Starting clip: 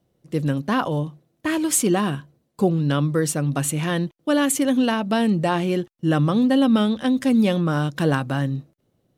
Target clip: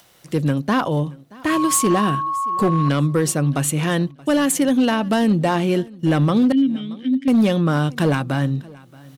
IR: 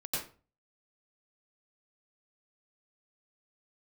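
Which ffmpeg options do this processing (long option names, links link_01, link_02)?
-filter_complex "[0:a]acrossover=split=930[link_01][link_02];[link_02]acompressor=mode=upward:threshold=-41dB:ratio=2.5[link_03];[link_01][link_03]amix=inputs=2:normalize=0,asettb=1/sr,asplit=3[link_04][link_05][link_06];[link_04]atrim=end=1.504[link_07];[link_05]atrim=start=1.5:end=2.89,asetpts=PTS-STARTPTS,afade=type=in:duration=0.004:curve=qsin,afade=type=out:start_time=1.386:duration=0.004:curve=qsin,aeval=exprs='val(0)+0.0631*sin(2*PI*1100*n/s)':channel_layout=same[link_08];[link_06]atrim=start=2.886[link_09];[link_07][link_08]acrossfade=duration=0.004:curve1=hsin:curve2=qsin[link_10];[link_10][link_09]acrossfade=duration=0.004:curve1=qsin:curve2=hsin,asplit=2[link_11][link_12];[link_12]alimiter=limit=-17.5dB:level=0:latency=1:release=343,volume=-2.5dB[link_13];[link_11][link_13]amix=inputs=2:normalize=0,asettb=1/sr,asplit=3[link_14][link_15][link_16];[link_14]atrim=end=6.524[link_17];[link_15]atrim=start=6.52:end=7.28,asetpts=PTS-STARTPTS,afade=type=in:duration=0.004:curve=qsin,afade=type=out:start_time=0.756:duration=0.004:curve=qsin,asplit=3[link_18][link_19][link_20];[link_18]bandpass=frequency=270:width_type=q:width=8,volume=0dB[link_21];[link_19]bandpass=frequency=2290:width_type=q:width=8,volume=-6dB[link_22];[link_20]bandpass=frequency=3010:width_type=q:width=8,volume=-9dB[link_23];[link_21][link_22][link_23]amix=inputs=3:normalize=0[link_24];[link_16]atrim=start=7.276[link_25];[link_17][link_24]acrossfade=duration=0.004:curve1=hsin:curve2=qsin[link_26];[link_26][link_25]acrossfade=duration=0.004:curve1=qsin:curve2=hsin,volume=11dB,asoftclip=hard,volume=-11dB,aecho=1:1:627|1254:0.0708|0.0135"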